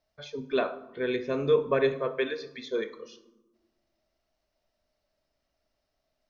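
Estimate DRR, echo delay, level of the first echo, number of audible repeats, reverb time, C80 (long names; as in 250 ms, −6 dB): 12.0 dB, no echo audible, no echo audible, no echo audible, 1.2 s, 17.5 dB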